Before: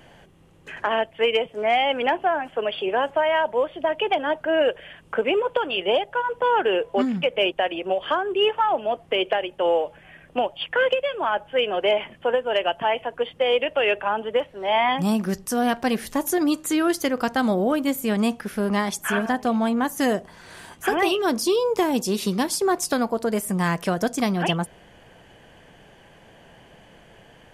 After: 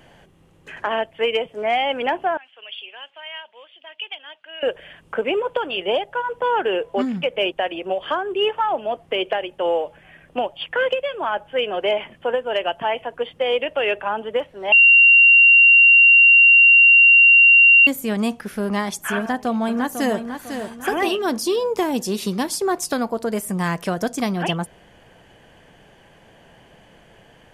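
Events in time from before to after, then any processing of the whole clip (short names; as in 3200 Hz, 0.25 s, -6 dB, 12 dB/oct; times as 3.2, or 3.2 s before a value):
2.37–4.63 band-pass 3000 Hz, Q 3.2
14.72–17.87 bleep 2760 Hz -7.5 dBFS
19.18–20.18 echo throw 0.5 s, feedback 40%, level -8 dB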